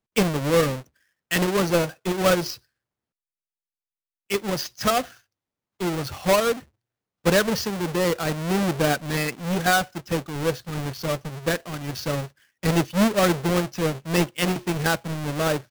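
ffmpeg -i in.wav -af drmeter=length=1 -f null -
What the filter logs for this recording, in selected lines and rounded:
Channel 1: DR: 9.9
Overall DR: 9.9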